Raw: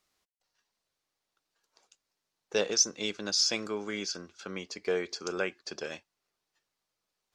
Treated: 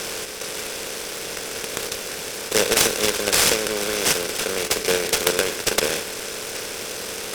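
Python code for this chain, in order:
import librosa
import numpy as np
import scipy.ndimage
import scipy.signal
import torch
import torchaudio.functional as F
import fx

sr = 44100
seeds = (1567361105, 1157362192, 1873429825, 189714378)

p1 = fx.bin_compress(x, sr, power=0.2)
p2 = fx.level_steps(p1, sr, step_db=22)
p3 = p1 + (p2 * 10.0 ** (-2.0 / 20.0))
p4 = fx.noise_mod_delay(p3, sr, seeds[0], noise_hz=2500.0, depth_ms=0.039)
y = p4 * 10.0 ** (-1.0 / 20.0)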